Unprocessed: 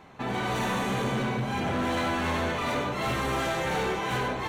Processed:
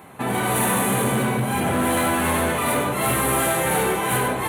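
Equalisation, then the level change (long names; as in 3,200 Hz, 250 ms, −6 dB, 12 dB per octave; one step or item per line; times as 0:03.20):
high-pass filter 78 Hz
high shelf with overshoot 7,700 Hz +13 dB, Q 3
+7.0 dB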